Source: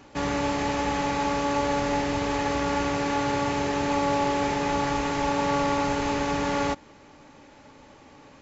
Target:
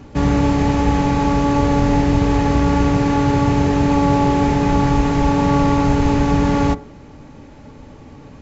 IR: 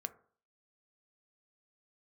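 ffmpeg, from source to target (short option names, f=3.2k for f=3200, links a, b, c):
-filter_complex "[0:a]lowshelf=f=490:g=9.5,asplit=2[a][b];[1:a]atrim=start_sample=2205,lowshelf=f=210:g=11[c];[b][c]afir=irnorm=-1:irlink=0,volume=7dB[d];[a][d]amix=inputs=2:normalize=0,volume=-6.5dB"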